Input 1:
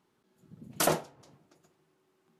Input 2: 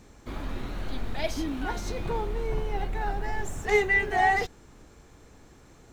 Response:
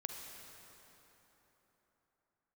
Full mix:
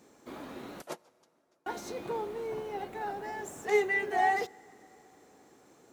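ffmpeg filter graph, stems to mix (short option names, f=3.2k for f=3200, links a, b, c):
-filter_complex "[0:a]aeval=exprs='val(0)*pow(10,-31*(0.5-0.5*cos(2*PI*6.5*n/s))/20)':c=same,volume=-8dB,asplit=2[a][b];[b]volume=-17dB[c];[1:a]equalizer=f=2.6k:w=0.33:g=-7,volume=-0.5dB,asplit=3[d][e][f];[d]atrim=end=0.82,asetpts=PTS-STARTPTS,afade=t=out:st=0.816:d=0.004:c=hsin[g];[e]atrim=start=0.82:end=1.66,asetpts=PTS-STARTPTS,volume=0[h];[f]atrim=start=1.66,asetpts=PTS-STARTPTS,afade=t=in:d=0.004:c=hsin[i];[g][h][i]concat=n=3:v=0:a=1,asplit=2[j][k];[k]volume=-19.5dB[l];[2:a]atrim=start_sample=2205[m];[c][l]amix=inputs=2:normalize=0[n];[n][m]afir=irnorm=-1:irlink=0[o];[a][j][o]amix=inputs=3:normalize=0,highpass=300"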